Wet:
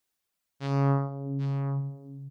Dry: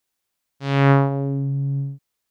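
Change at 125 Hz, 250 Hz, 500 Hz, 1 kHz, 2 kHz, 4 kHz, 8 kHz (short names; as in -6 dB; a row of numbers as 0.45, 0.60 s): -8.0 dB, -9.0 dB, -10.5 dB, -10.5 dB, -17.5 dB, under -10 dB, n/a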